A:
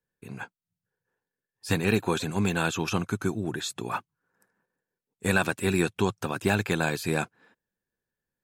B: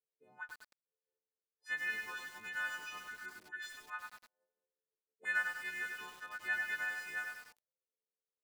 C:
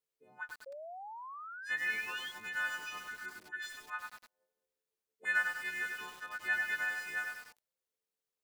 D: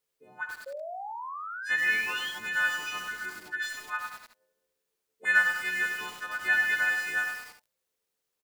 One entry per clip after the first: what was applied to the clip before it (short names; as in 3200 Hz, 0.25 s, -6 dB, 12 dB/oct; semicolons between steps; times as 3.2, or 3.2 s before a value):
frequency quantiser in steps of 3 st; auto-wah 450–1700 Hz, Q 5.6, up, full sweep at -29.5 dBFS; lo-fi delay 99 ms, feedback 55%, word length 8-bit, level -3.5 dB; gain -5.5 dB
painted sound rise, 0.66–2.32, 530–3400 Hz -49 dBFS; gain +3 dB
early reflections 49 ms -17 dB, 71 ms -8.5 dB; gain +7.5 dB